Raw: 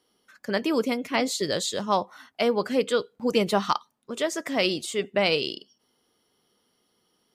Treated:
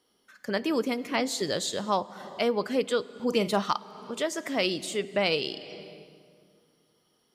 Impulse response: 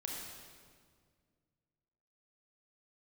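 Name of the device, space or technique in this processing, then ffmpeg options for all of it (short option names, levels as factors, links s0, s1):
ducked reverb: -filter_complex "[0:a]asplit=3[s0][s1][s2];[1:a]atrim=start_sample=2205[s3];[s1][s3]afir=irnorm=-1:irlink=0[s4];[s2]apad=whole_len=324040[s5];[s4][s5]sidechaincompress=threshold=0.0224:ratio=12:attack=16:release=328,volume=0.631[s6];[s0][s6]amix=inputs=2:normalize=0,asettb=1/sr,asplit=3[s7][s8][s9];[s7]atrim=end=3.134[s10];[s8]atrim=start=3.13:end=3.62,asetpts=PTS-STARTPTS,afade=t=in:d=0.004:c=qsin,afade=t=out:st=0.486:d=0.004:c=qsin,asplit=2[s11][s12];[s12]adelay=45,volume=0.251[s13];[s11][s13]amix=inputs=2:normalize=0,atrim=end_sample=21609[s14];[s9]atrim=start=3.616[s15];[s10][s14]acrossfade=d=0.004:c1=hsin:c2=qsin[s16];[s16][s15]acrossfade=d=0.004:c1=qsin:c2=hsin,volume=0.668"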